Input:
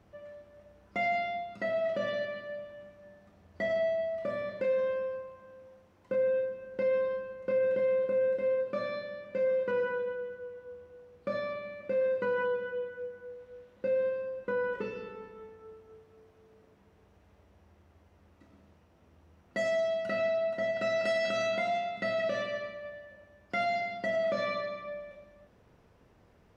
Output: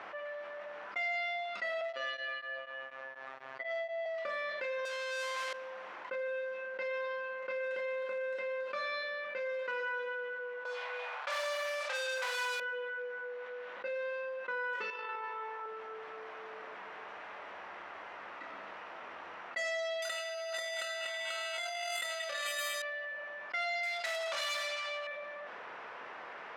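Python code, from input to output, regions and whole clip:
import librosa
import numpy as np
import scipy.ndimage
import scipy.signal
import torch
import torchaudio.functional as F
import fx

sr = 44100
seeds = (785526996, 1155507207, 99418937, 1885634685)

y = fx.chain(x, sr, fx.robotise(hz=133.0),
    fx.tremolo_abs(hz=4.1), at=(1.81, 4.06))
y = fx.chain(y, sr, fx.highpass(hz=210.0, slope=24),
    fx.over_compress(threshold_db=-39.0, ratio=-0.5),
    fx.power_curve(exponent=0.35), at=(4.85, 5.53))
y = fx.chain(y, sr, fx.leveller(passes=5),
    fx.ladder_highpass(hz=560.0, resonance_pct=40),
    fx.room_flutter(wall_m=7.6, rt60_s=0.47), at=(10.65, 12.6))
y = fx.chain(y, sr, fx.highpass(hz=290.0, slope=12),
    fx.peak_eq(hz=960.0, db=12.5, octaves=0.25),
    fx.over_compress(threshold_db=-45.0, ratio=-0.5), at=(14.9, 15.66))
y = fx.chain(y, sr, fx.peak_eq(hz=200.0, db=-8.0, octaves=1.9),
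    fx.over_compress(threshold_db=-40.0, ratio=-1.0),
    fx.resample_bad(factor=8, down='none', up='hold'), at=(20.02, 22.82))
y = fx.chain(y, sr, fx.lower_of_two(delay_ms=1.4),
    fx.high_shelf(hz=2900.0, db=6.0),
    fx.clip_hard(threshold_db=-30.0), at=(23.83, 25.07))
y = scipy.signal.sosfilt(scipy.signal.butter(2, 1200.0, 'highpass', fs=sr, output='sos'), y)
y = fx.env_lowpass(y, sr, base_hz=1900.0, full_db=-35.5)
y = fx.env_flatten(y, sr, amount_pct=70)
y = y * librosa.db_to_amplitude(-1.5)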